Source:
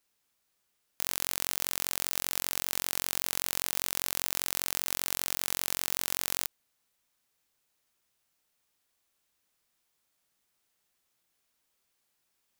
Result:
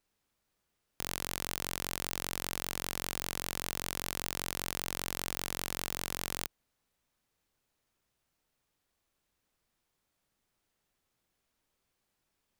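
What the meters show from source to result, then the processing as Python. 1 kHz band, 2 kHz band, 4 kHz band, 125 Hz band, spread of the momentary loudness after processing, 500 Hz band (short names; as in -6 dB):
0.0 dB, -2.0 dB, -4.0 dB, +6.5 dB, 1 LU, +2.0 dB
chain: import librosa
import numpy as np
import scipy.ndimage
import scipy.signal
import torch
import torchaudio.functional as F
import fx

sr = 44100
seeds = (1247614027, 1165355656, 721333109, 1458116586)

y = fx.tilt_eq(x, sr, slope=-2.0)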